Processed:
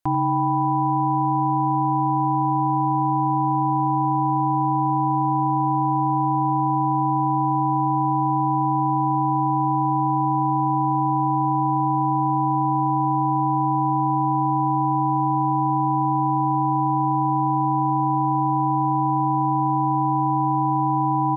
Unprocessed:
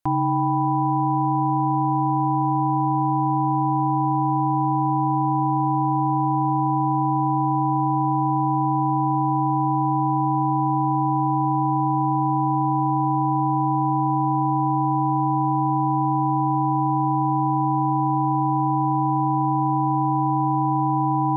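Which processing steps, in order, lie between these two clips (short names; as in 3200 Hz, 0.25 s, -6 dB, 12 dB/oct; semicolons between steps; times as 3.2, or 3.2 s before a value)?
echo 89 ms -12.5 dB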